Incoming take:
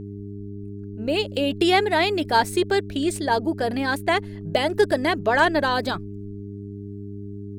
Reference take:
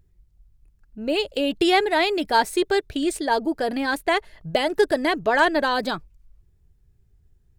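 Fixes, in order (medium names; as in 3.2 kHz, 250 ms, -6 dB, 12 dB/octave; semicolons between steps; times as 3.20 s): de-hum 100.9 Hz, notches 4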